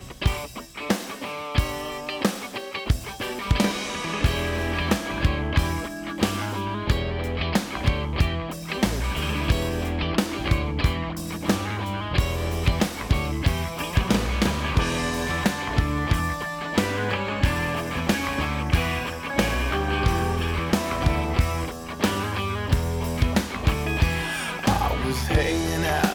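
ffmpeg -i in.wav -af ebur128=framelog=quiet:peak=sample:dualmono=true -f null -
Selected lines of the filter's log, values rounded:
Integrated loudness:
  I:         -22.3 LUFS
  Threshold: -32.3 LUFS
Loudness range:
  LRA:         1.9 LU
  Threshold: -42.3 LUFS
  LRA low:   -23.3 LUFS
  LRA high:  -21.4 LUFS
Sample peak:
  Peak:      -10.6 dBFS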